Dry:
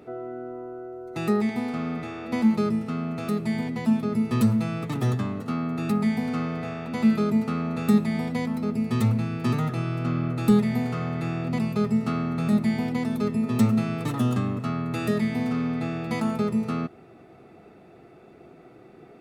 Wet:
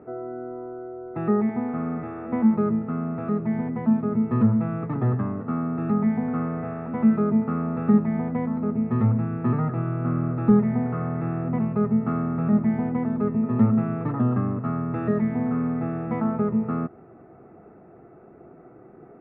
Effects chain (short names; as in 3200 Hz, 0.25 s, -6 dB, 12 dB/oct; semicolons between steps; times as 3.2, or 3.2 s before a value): LPF 1600 Hz 24 dB/oct; gain +1.5 dB